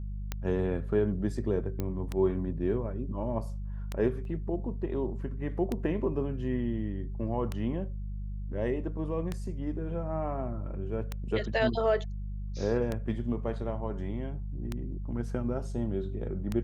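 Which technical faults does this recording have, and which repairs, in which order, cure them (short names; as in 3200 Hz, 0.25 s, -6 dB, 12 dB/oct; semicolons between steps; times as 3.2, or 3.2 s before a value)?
hum 50 Hz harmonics 4 -36 dBFS
tick 33 1/3 rpm -18 dBFS
1.8 pop -19 dBFS
4.25 gap 2.1 ms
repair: de-click; de-hum 50 Hz, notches 4; interpolate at 4.25, 2.1 ms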